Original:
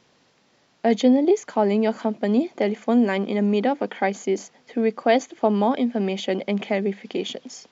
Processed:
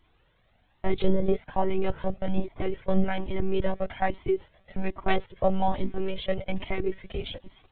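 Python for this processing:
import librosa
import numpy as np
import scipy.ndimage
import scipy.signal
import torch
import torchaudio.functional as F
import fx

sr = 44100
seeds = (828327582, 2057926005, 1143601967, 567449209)

y = fx.lpc_monotone(x, sr, seeds[0], pitch_hz=190.0, order=8)
y = fx.comb_cascade(y, sr, direction='rising', hz=1.2)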